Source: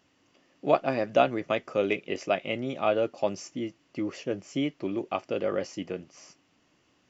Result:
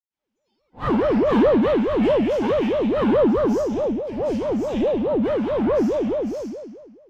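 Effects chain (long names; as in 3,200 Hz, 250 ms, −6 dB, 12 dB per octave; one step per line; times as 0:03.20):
gain on one half-wave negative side −12 dB
in parallel at +1.5 dB: downward compressor, threshold −40 dBFS, peak gain reduction 21 dB
on the sum: noise reduction from a noise print of the clip's start 22 dB
convolution reverb RT60 1.5 s, pre-delay 85 ms
ring modulator whose carrier an LFO sweeps 410 Hz, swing 50%, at 4.7 Hz
level −2.5 dB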